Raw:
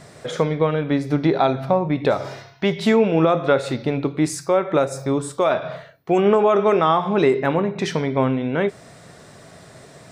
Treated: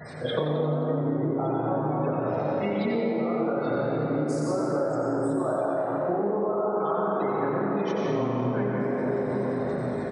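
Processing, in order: short-time reversal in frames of 79 ms; high shelf 9700 Hz -8.5 dB; spectral gate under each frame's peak -20 dB strong; reverb RT60 3.8 s, pre-delay 91 ms, DRR -3 dB; compressor 16:1, threshold -29 dBFS, peak gain reduction 19.5 dB; frequency-shifting echo 88 ms, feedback 55%, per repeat +98 Hz, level -9 dB; mismatched tape noise reduction encoder only; gain +5.5 dB

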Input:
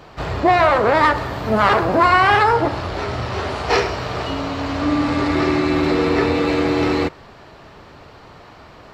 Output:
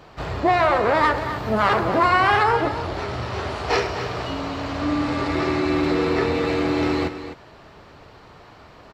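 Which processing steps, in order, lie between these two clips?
echo 0.254 s -11 dB; gain -4 dB

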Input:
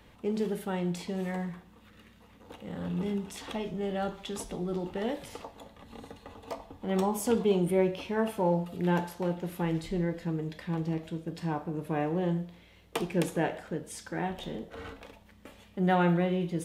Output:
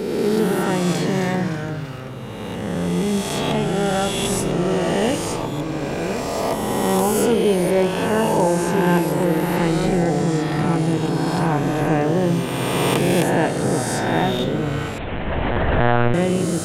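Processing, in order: spectral swells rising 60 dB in 2.24 s; in parallel at +1 dB: vocal rider within 5 dB 0.5 s; on the sum: echoes that change speed 85 ms, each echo -3 st, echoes 3, each echo -6 dB; 14.98–16.14 monotone LPC vocoder at 8 kHz 120 Hz; gain +1.5 dB

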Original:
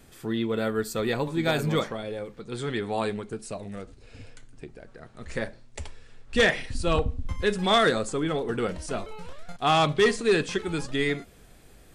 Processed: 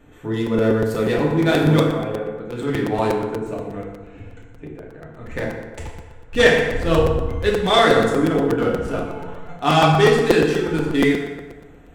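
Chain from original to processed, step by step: Wiener smoothing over 9 samples; FDN reverb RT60 1.3 s, low-frequency decay 1×, high-frequency decay 0.65×, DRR -3.5 dB; crackling interface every 0.12 s, samples 256, repeat, from 0.46; gain +2 dB

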